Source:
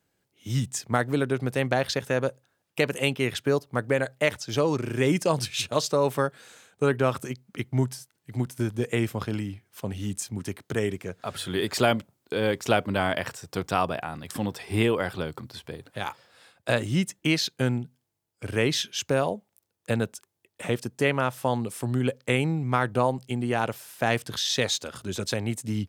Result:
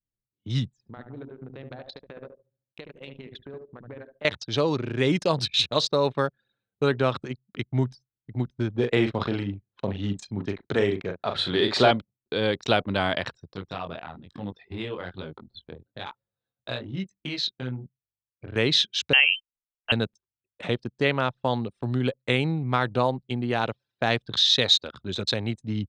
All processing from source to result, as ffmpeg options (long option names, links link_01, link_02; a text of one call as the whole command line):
ffmpeg -i in.wav -filter_complex "[0:a]asettb=1/sr,asplit=3[link_01][link_02][link_03];[link_01]atrim=end=0.714[link_04];[link_02]atrim=start=0.71:end=4.25,asetpts=PTS-STARTPTS,afade=type=in:duration=0.004:curve=qsin,afade=type=out:start_time=3.536:duration=0.004:curve=qsin,bandreject=frequency=60:width_type=h:width=6,bandreject=frequency=120:width_type=h:width=6,acompressor=threshold=-43dB:ratio=3:attack=3.2:release=140:knee=1:detection=peak,asplit=2[link_05][link_06];[link_06]adelay=73,lowpass=frequency=2900:poles=1,volume=-3dB,asplit=2[link_07][link_08];[link_08]adelay=73,lowpass=frequency=2900:poles=1,volume=0.49,asplit=2[link_09][link_10];[link_10]adelay=73,lowpass=frequency=2900:poles=1,volume=0.49,asplit=2[link_11][link_12];[link_12]adelay=73,lowpass=frequency=2900:poles=1,volume=0.49,asplit=2[link_13][link_14];[link_14]adelay=73,lowpass=frequency=2900:poles=1,volume=0.49,asplit=2[link_15][link_16];[link_16]adelay=73,lowpass=frequency=2900:poles=1,volume=0.49[link_17];[link_05][link_07][link_09][link_11][link_13][link_15][link_17]amix=inputs=7:normalize=0,atrim=end_sample=156114[link_18];[link_03]atrim=start=4.246[link_19];[link_04][link_18]acrossfade=duration=0.004:curve1=hsin:curve2=qsin[link_20];[link_20][link_19]acrossfade=duration=0.004:curve1=qsin:curve2=hsin,asettb=1/sr,asplit=3[link_21][link_22][link_23];[link_21]atrim=end=8.754[link_24];[link_22]atrim=start=8.75:end=11.91,asetpts=PTS-STARTPTS,afade=type=in:duration=0.004:curve=qsin,afade=type=out:start_time=3.156:duration=0.004:curve=qsin,tiltshelf=frequency=860:gain=4.5,asplit=2[link_25][link_26];[link_26]highpass=frequency=720:poles=1,volume=11dB,asoftclip=type=tanh:threshold=-6dB[link_27];[link_25][link_27]amix=inputs=2:normalize=0,lowpass=frequency=4600:poles=1,volume=-6dB,asplit=2[link_28][link_29];[link_29]adelay=40,volume=-6.5dB[link_30];[link_28][link_30]amix=inputs=2:normalize=0,atrim=end_sample=139356[link_31];[link_23]atrim=start=11.906[link_32];[link_24][link_31]acrossfade=duration=0.004:curve1=hsin:curve2=qsin[link_33];[link_33][link_32]acrossfade=duration=0.004:curve1=qsin:curve2=hsin,asettb=1/sr,asplit=3[link_34][link_35][link_36];[link_34]atrim=end=13.534[link_37];[link_35]atrim=start=13.53:end=18.56,asetpts=PTS-STARTPTS,afade=type=in:duration=0.004:curve=qsin,afade=type=out:start_time=5.026:duration=0.004:curve=qsin,acompressor=threshold=-29dB:ratio=2:attack=3.2:release=140:knee=1:detection=peak,flanger=delay=20:depth=4.1:speed=1.1[link_38];[link_36]atrim=start=18.556[link_39];[link_37][link_38]acrossfade=duration=0.004:curve1=hsin:curve2=qsin[link_40];[link_40][link_39]acrossfade=duration=0.004:curve1=qsin:curve2=hsin,asettb=1/sr,asplit=3[link_41][link_42][link_43];[link_41]atrim=end=19.134[link_44];[link_42]atrim=start=19.13:end=19.92,asetpts=PTS-STARTPTS,afade=type=in:duration=0.004:curve=qsin,afade=type=out:start_time=0.786:duration=0.004:curve=qsin,highpass=frequency=420:poles=1,acontrast=66,lowpass=frequency=2800:width_type=q:width=0.5098,lowpass=frequency=2800:width_type=q:width=0.6013,lowpass=frequency=2800:width_type=q:width=0.9,lowpass=frequency=2800:width_type=q:width=2.563,afreqshift=-3300[link_45];[link_43]atrim=start=19.916[link_46];[link_44][link_45]acrossfade=duration=0.004:curve1=hsin:curve2=qsin[link_47];[link_47][link_46]acrossfade=duration=0.004:curve1=qsin:curve2=hsin,lowpass=5100,anlmdn=1,equalizer=frequency=3900:width_type=o:width=0.37:gain=13.5" out.wav